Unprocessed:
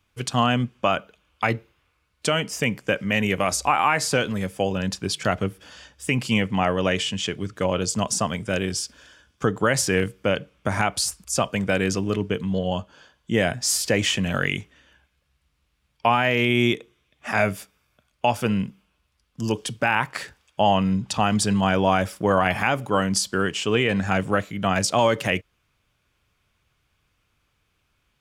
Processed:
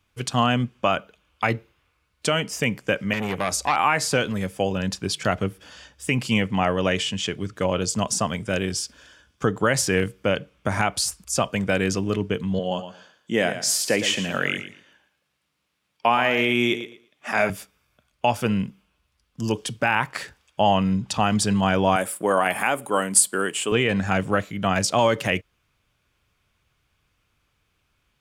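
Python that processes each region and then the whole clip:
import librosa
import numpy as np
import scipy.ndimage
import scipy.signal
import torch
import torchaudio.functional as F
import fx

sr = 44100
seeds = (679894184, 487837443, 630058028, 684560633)

y = fx.chain(x, sr, fx.highpass(hz=62.0, slope=12),
    fx.transformer_sat(knee_hz=1300.0), at=(3.13, 3.76))
y = fx.chain(y, sr, fx.highpass(hz=200.0, slope=12),
    fx.echo_feedback(ms=115, feedback_pct=20, wet_db=-11), at=(12.59, 17.5))
y = fx.chain(y, sr, fx.highpass(hz=260.0, slope=12),
    fx.high_shelf_res(hz=7100.0, db=8.0, q=3.0), at=(21.96, 23.72))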